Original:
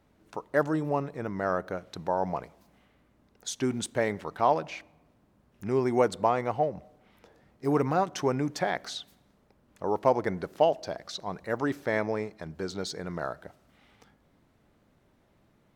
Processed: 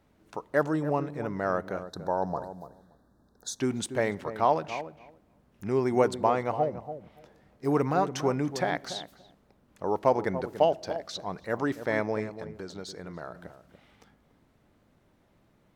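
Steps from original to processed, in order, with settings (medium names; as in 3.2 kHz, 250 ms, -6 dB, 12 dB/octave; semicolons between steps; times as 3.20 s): 1.83–3.60 s: elliptic band-stop 1.7–3.7 kHz, stop band 40 dB; 12.32–13.35 s: compression 2:1, threshold -41 dBFS, peak gain reduction 8 dB; on a send: filtered feedback delay 287 ms, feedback 16%, low-pass 820 Hz, level -10 dB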